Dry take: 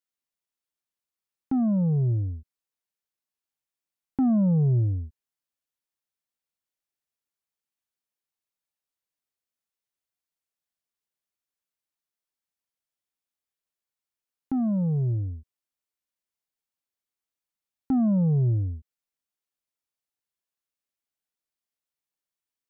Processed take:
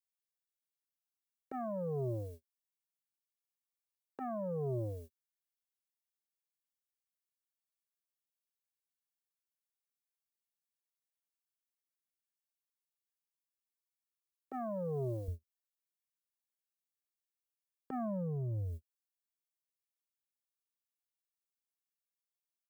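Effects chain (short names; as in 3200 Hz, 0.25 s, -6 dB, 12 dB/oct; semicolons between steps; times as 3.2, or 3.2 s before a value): gate -33 dBFS, range -30 dB; HPF 290 Hz 12 dB/oct, from 15.28 s 110 Hz; tilt +3.5 dB/oct; comb 1.8 ms, depth 90%; compressor 10:1, threshold -43 dBFS, peak gain reduction 15.5 dB; limiter -42 dBFS, peak gain reduction 10.5 dB; gain +10.5 dB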